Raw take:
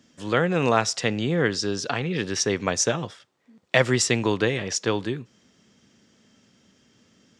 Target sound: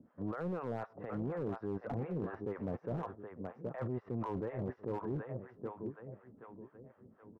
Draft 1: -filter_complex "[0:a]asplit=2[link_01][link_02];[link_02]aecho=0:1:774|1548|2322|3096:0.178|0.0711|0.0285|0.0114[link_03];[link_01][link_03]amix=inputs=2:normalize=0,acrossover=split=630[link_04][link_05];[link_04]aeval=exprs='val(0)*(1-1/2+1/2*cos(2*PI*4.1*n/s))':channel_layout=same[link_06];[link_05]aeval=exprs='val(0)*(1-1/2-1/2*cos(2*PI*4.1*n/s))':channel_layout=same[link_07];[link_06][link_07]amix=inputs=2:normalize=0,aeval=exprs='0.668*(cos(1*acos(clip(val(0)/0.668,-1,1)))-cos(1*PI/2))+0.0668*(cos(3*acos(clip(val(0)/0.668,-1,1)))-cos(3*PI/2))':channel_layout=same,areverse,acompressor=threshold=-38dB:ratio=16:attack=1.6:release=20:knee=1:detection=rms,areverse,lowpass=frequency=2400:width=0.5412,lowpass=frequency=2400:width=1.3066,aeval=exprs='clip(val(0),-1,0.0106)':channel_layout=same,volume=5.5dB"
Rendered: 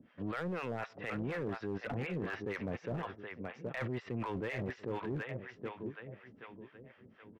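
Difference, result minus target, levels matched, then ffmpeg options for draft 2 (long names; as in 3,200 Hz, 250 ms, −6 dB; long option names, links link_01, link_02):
2,000 Hz band +11.0 dB
-filter_complex "[0:a]asplit=2[link_01][link_02];[link_02]aecho=0:1:774|1548|2322|3096:0.178|0.0711|0.0285|0.0114[link_03];[link_01][link_03]amix=inputs=2:normalize=0,acrossover=split=630[link_04][link_05];[link_04]aeval=exprs='val(0)*(1-1/2+1/2*cos(2*PI*4.1*n/s))':channel_layout=same[link_06];[link_05]aeval=exprs='val(0)*(1-1/2-1/2*cos(2*PI*4.1*n/s))':channel_layout=same[link_07];[link_06][link_07]amix=inputs=2:normalize=0,aeval=exprs='0.668*(cos(1*acos(clip(val(0)/0.668,-1,1)))-cos(1*PI/2))+0.0668*(cos(3*acos(clip(val(0)/0.668,-1,1)))-cos(3*PI/2))':channel_layout=same,areverse,acompressor=threshold=-38dB:ratio=16:attack=1.6:release=20:knee=1:detection=rms,areverse,lowpass=frequency=1200:width=0.5412,lowpass=frequency=1200:width=1.3066,aeval=exprs='clip(val(0),-1,0.0106)':channel_layout=same,volume=5.5dB"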